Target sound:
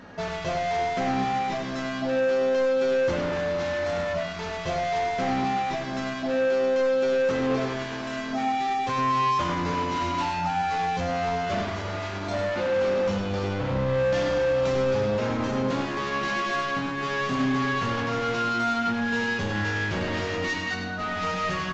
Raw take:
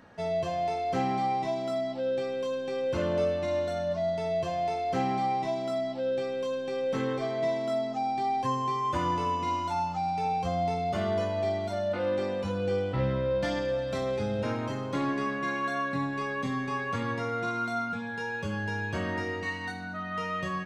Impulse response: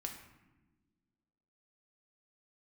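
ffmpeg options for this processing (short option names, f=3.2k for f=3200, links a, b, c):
-filter_complex "[0:a]bandreject=f=70.6:t=h:w=4,bandreject=f=141.2:t=h:w=4,bandreject=f=211.8:t=h:w=4,bandreject=f=282.4:t=h:w=4,bandreject=f=353:t=h:w=4,bandreject=f=423.6:t=h:w=4,bandreject=f=494.2:t=h:w=4,bandreject=f=564.8:t=h:w=4,bandreject=f=635.4:t=h:w=4,bandreject=f=706:t=h:w=4,bandreject=f=776.6:t=h:w=4,bandreject=f=847.2:t=h:w=4,bandreject=f=917.8:t=h:w=4,bandreject=f=988.4:t=h:w=4,bandreject=f=1.059k:t=h:w=4,bandreject=f=1.1296k:t=h:w=4,bandreject=f=1.2002k:t=h:w=4,bandreject=f=1.2708k:t=h:w=4,bandreject=f=1.3414k:t=h:w=4,bandreject=f=1.412k:t=h:w=4,bandreject=f=1.4826k:t=h:w=4,bandreject=f=1.5532k:t=h:w=4,bandreject=f=1.6238k:t=h:w=4,bandreject=f=1.6944k:t=h:w=4,bandreject=f=1.765k:t=h:w=4,bandreject=f=1.8356k:t=h:w=4,bandreject=f=1.9062k:t=h:w=4,bandreject=f=1.9768k:t=h:w=4,bandreject=f=2.0474k:t=h:w=4,bandreject=f=2.118k:t=h:w=4,bandreject=f=2.1886k:t=h:w=4,bandreject=f=2.2592k:t=h:w=4,bandreject=f=2.3298k:t=h:w=4,bandreject=f=2.4004k:t=h:w=4,bandreject=f=2.471k:t=h:w=4,bandreject=f=2.5416k:t=h:w=4,bandreject=f=2.6122k:t=h:w=4,bandreject=f=2.6828k:t=h:w=4,alimiter=limit=-23.5dB:level=0:latency=1:release=369,volume=35dB,asoftclip=hard,volume=-35dB,atempo=0.95,asplit=2[a][b];[b]adelay=99.13,volume=-6dB,highshelf=f=4k:g=-2.23[c];[a][c]amix=inputs=2:normalize=0,asplit=2[d][e];[1:a]atrim=start_sample=2205[f];[e][f]afir=irnorm=-1:irlink=0,volume=4dB[g];[d][g]amix=inputs=2:normalize=0,volume=2.5dB" -ar 16000 -c:a libvorbis -b:a 48k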